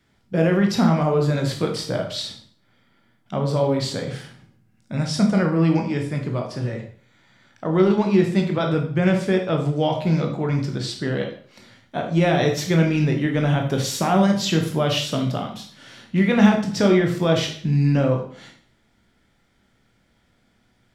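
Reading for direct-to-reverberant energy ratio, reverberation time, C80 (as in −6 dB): 2.0 dB, 0.50 s, 11.5 dB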